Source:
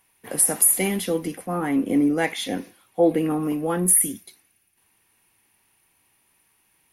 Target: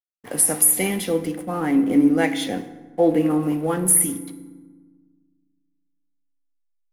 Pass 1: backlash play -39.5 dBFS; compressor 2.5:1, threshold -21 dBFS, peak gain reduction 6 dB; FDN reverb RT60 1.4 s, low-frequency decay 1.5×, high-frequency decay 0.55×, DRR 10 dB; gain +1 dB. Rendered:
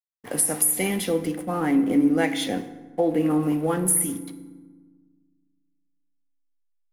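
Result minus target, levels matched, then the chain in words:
compressor: peak gain reduction +6 dB
backlash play -39.5 dBFS; FDN reverb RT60 1.4 s, low-frequency decay 1.5×, high-frequency decay 0.55×, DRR 10 dB; gain +1 dB

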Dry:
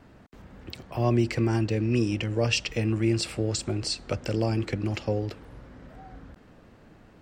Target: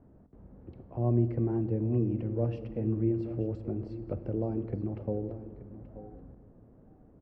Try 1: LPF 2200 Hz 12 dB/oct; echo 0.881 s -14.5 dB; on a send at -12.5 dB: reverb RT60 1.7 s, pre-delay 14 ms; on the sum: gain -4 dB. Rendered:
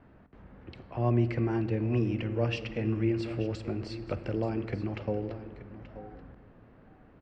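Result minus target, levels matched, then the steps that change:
2000 Hz band +18.5 dB
change: LPF 590 Hz 12 dB/oct

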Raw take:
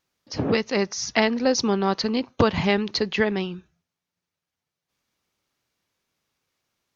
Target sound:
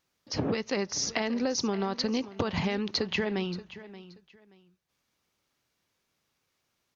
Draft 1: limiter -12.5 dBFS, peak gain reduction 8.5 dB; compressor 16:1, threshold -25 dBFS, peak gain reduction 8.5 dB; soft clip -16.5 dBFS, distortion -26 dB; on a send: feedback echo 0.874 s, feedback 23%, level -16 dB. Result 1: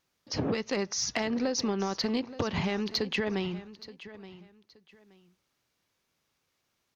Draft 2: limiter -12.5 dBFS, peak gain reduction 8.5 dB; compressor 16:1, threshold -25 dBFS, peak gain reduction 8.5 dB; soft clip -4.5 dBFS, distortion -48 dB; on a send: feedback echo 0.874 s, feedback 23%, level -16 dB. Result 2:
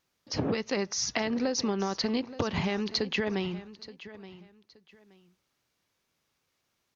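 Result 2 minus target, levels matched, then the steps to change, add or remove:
echo 0.296 s late
change: feedback echo 0.578 s, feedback 23%, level -16 dB

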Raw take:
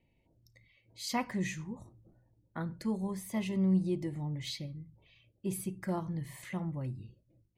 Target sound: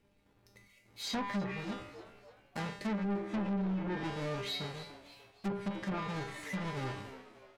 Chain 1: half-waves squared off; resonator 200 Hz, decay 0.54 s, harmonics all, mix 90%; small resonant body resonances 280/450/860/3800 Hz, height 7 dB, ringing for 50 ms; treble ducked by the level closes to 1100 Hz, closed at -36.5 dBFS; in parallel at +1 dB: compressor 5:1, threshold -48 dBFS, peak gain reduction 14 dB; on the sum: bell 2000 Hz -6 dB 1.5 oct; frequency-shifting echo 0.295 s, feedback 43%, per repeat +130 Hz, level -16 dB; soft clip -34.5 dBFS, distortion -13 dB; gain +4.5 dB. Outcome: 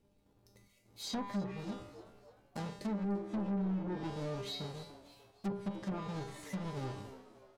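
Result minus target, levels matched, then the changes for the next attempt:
compressor: peak gain reduction +8 dB; 2000 Hz band -7.5 dB
change: compressor 5:1, threshold -38 dBFS, peak gain reduction 6 dB; change: bell 2000 Hz +4.5 dB 1.5 oct

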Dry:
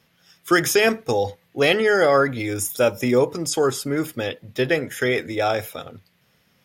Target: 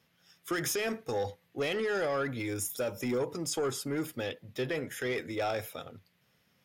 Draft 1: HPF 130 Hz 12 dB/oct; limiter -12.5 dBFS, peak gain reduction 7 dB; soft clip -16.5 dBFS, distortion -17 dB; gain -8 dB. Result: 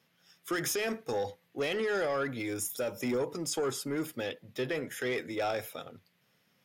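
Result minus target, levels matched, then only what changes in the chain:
125 Hz band -3.0 dB
change: HPF 43 Hz 12 dB/oct

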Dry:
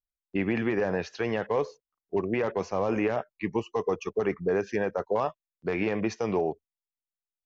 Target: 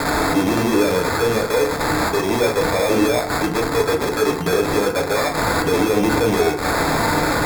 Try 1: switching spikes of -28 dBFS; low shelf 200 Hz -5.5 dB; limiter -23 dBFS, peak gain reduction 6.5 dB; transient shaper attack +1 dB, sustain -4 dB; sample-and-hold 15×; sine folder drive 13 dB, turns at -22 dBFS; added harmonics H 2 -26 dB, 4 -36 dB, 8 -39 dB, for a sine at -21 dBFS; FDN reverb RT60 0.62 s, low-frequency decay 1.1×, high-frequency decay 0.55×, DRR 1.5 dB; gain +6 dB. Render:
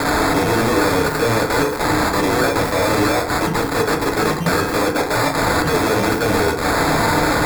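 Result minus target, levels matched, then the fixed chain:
sine folder: distortion +14 dB
switching spikes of -28 dBFS; low shelf 200 Hz -5.5 dB; limiter -23 dBFS, peak gain reduction 6.5 dB; transient shaper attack +1 dB, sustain -4 dB; sample-and-hold 15×; sine folder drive 7 dB, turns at -22 dBFS; added harmonics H 2 -26 dB, 4 -36 dB, 8 -39 dB, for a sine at -21 dBFS; FDN reverb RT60 0.62 s, low-frequency decay 1.1×, high-frequency decay 0.55×, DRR 1.5 dB; gain +6 dB

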